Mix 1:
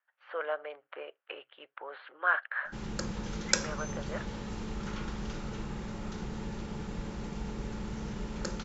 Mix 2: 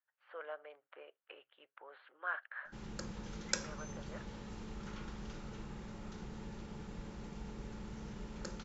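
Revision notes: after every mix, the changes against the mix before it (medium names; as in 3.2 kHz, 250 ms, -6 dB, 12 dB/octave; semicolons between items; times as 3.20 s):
speech -11.5 dB; background -8.5 dB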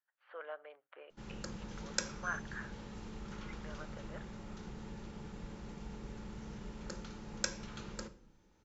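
background: entry -1.55 s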